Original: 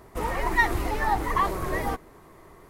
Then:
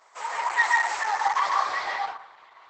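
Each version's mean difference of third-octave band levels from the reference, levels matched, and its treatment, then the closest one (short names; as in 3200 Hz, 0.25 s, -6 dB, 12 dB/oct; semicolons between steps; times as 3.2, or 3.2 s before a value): 13.5 dB: HPF 760 Hz 24 dB/oct; low-pass sweep 10000 Hz -> 3500 Hz, 0.36–2.19; plate-style reverb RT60 0.6 s, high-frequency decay 0.5×, pre-delay 0.115 s, DRR -0.5 dB; Opus 10 kbps 48000 Hz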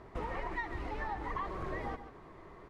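6.5 dB: LPF 3700 Hz 12 dB/oct; compressor 6:1, threshold -33 dBFS, peak gain reduction 16 dB; echo 0.143 s -11 dB; gain -2.5 dB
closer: second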